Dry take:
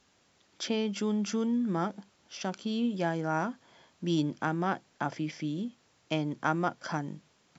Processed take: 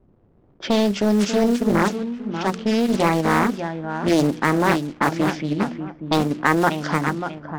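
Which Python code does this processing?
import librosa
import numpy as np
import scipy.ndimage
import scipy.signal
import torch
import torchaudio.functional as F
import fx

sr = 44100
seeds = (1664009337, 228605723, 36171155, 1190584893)

p1 = fx.block_float(x, sr, bits=5)
p2 = fx.low_shelf(p1, sr, hz=130.0, db=-11.5)
p3 = p2 + fx.echo_feedback(p2, sr, ms=590, feedback_pct=26, wet_db=-7.5, dry=0)
p4 = fx.dmg_crackle(p3, sr, seeds[0], per_s=550.0, level_db=-43.0)
p5 = fx.env_lowpass(p4, sr, base_hz=310.0, full_db=-29.0)
p6 = fx.low_shelf(p5, sr, hz=260.0, db=8.0)
p7 = fx.hum_notches(p6, sr, base_hz=60, count=8)
p8 = fx.level_steps(p7, sr, step_db=16)
p9 = p7 + F.gain(torch.from_numpy(p8), -2.0).numpy()
p10 = fx.doppler_dist(p9, sr, depth_ms=0.78)
y = F.gain(torch.from_numpy(p10), 8.0).numpy()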